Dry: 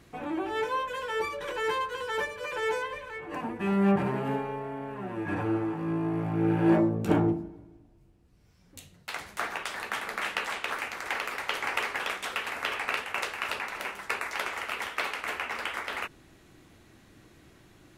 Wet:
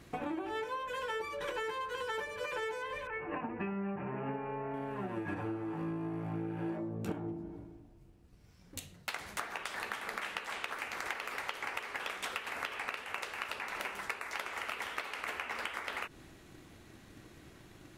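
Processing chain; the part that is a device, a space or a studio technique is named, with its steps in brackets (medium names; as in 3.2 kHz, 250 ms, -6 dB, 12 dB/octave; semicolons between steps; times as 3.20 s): 3.07–4.74 s: elliptic low-pass 2.7 kHz, stop band 40 dB; drum-bus smash (transient shaper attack +6 dB, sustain +2 dB; compression 16:1, threshold -34 dBFS, peak gain reduction 21.5 dB; saturation -19.5 dBFS, distortion -27 dB)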